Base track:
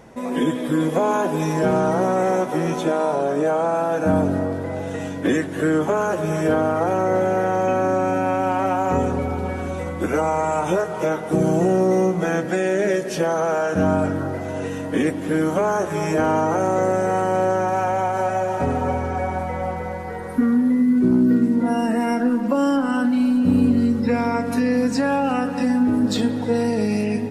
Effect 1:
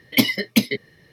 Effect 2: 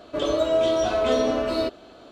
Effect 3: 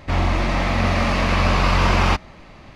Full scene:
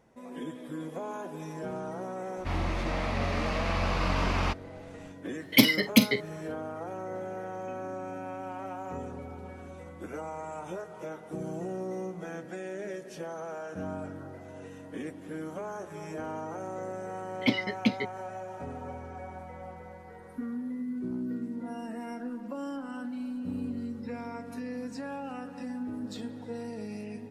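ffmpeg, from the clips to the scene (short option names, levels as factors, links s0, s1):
-filter_complex "[1:a]asplit=2[s0][s1];[0:a]volume=0.126[s2];[s0]asplit=2[s3][s4];[s4]adelay=46,volume=0.237[s5];[s3][s5]amix=inputs=2:normalize=0[s6];[s1]lowpass=3100[s7];[3:a]atrim=end=2.75,asetpts=PTS-STARTPTS,volume=0.266,afade=t=in:d=0.004:c=hsin,afade=t=out:st=2.746:d=0.004:c=hsin,adelay=2370[s8];[s6]atrim=end=1.12,asetpts=PTS-STARTPTS,volume=0.75,afade=t=in:d=0.004:c=hsin,afade=t=out:st=1.116:d=0.004:c=hsin,adelay=5400[s9];[s7]atrim=end=1.12,asetpts=PTS-STARTPTS,volume=0.398,afade=t=in:d=0.004:c=hsin,afade=t=out:st=1.116:d=0.004:c=hsin,adelay=17290[s10];[s2][s8][s9][s10]amix=inputs=4:normalize=0"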